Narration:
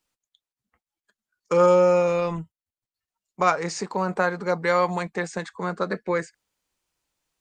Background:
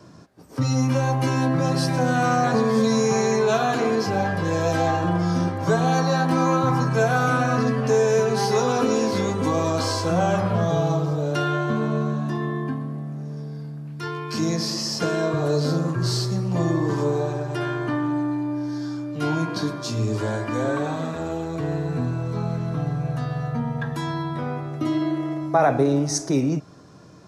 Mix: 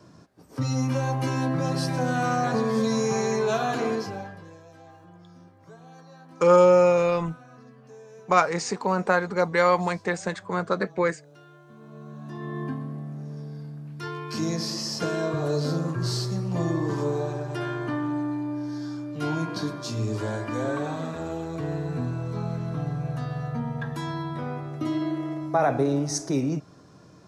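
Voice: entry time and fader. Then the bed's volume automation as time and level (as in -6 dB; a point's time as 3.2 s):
4.90 s, +1.0 dB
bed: 3.92 s -4.5 dB
4.66 s -28 dB
11.66 s -28 dB
12.62 s -4 dB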